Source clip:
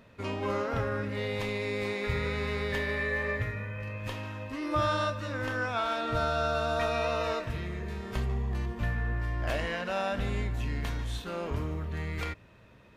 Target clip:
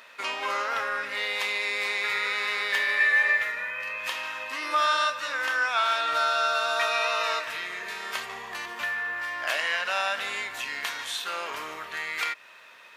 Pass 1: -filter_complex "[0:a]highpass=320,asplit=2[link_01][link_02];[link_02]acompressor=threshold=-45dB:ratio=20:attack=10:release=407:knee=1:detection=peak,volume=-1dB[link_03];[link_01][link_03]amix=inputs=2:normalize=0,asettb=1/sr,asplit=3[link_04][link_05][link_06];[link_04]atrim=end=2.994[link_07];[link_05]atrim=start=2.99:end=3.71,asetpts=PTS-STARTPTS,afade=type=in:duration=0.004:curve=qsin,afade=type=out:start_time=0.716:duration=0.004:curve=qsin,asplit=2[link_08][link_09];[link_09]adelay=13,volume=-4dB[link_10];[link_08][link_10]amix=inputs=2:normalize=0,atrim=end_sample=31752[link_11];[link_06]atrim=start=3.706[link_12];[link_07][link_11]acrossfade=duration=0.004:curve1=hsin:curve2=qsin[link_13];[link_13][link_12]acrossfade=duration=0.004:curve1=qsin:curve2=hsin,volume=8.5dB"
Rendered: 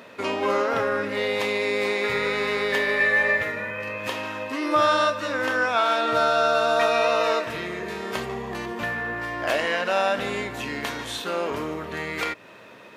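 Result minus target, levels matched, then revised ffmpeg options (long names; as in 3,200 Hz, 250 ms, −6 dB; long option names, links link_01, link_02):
250 Hz band +17.0 dB
-filter_complex "[0:a]highpass=1200,asplit=2[link_01][link_02];[link_02]acompressor=threshold=-45dB:ratio=20:attack=10:release=407:knee=1:detection=peak,volume=-1dB[link_03];[link_01][link_03]amix=inputs=2:normalize=0,asettb=1/sr,asplit=3[link_04][link_05][link_06];[link_04]atrim=end=2.994[link_07];[link_05]atrim=start=2.99:end=3.71,asetpts=PTS-STARTPTS,afade=type=in:duration=0.004:curve=qsin,afade=type=out:start_time=0.716:duration=0.004:curve=qsin,asplit=2[link_08][link_09];[link_09]adelay=13,volume=-4dB[link_10];[link_08][link_10]amix=inputs=2:normalize=0,atrim=end_sample=31752[link_11];[link_06]atrim=start=3.706[link_12];[link_07][link_11]acrossfade=duration=0.004:curve1=hsin:curve2=qsin[link_13];[link_13][link_12]acrossfade=duration=0.004:curve1=qsin:curve2=hsin,volume=8.5dB"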